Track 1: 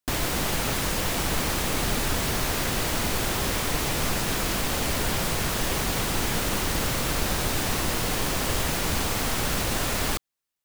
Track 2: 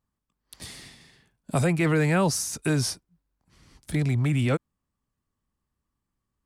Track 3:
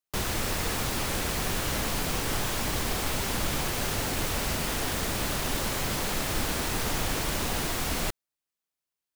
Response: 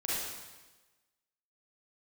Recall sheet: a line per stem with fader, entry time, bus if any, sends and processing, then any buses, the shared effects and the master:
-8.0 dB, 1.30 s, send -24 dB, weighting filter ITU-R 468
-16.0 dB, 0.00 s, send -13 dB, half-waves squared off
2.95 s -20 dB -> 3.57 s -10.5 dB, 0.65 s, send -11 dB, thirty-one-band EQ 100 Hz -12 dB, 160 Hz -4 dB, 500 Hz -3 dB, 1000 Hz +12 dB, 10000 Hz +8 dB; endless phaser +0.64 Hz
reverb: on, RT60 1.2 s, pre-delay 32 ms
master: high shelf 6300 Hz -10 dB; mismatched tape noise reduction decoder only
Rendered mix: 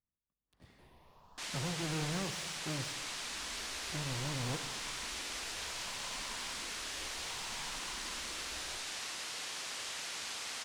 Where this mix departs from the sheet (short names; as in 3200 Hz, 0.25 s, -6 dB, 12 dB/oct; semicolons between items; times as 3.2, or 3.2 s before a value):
stem 1 -8.0 dB -> -17.5 dB; stem 2 -16.0 dB -> -22.0 dB; stem 3 -20.0 dB -> -30.5 dB